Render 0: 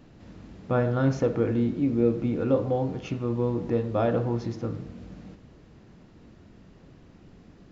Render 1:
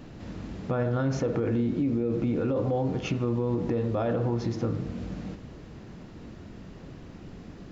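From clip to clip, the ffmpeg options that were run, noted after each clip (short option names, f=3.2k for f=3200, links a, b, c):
-af "alimiter=limit=-21.5dB:level=0:latency=1:release=40,acompressor=threshold=-35dB:ratio=2,volume=7.5dB"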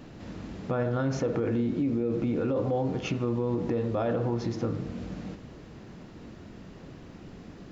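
-af "lowshelf=f=120:g=-5"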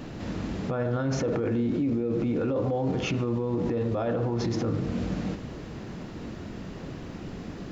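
-af "alimiter=level_in=3.5dB:limit=-24dB:level=0:latency=1:release=29,volume=-3.5dB,volume=7.5dB"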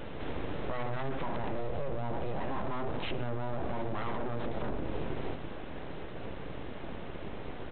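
-af "acompressor=threshold=-28dB:ratio=6,aresample=8000,aeval=exprs='abs(val(0))':c=same,aresample=44100"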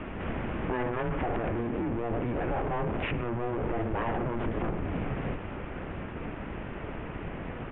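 -af "highpass=f=170:t=q:w=0.5412,highpass=f=170:t=q:w=1.307,lowpass=f=3k:t=q:w=0.5176,lowpass=f=3k:t=q:w=0.7071,lowpass=f=3k:t=q:w=1.932,afreqshift=-240,volume=7dB"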